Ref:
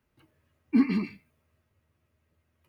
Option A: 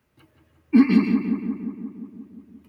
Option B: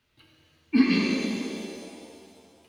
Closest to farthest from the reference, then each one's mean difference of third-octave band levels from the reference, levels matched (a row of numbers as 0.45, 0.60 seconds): A, B; 3.0, 7.0 decibels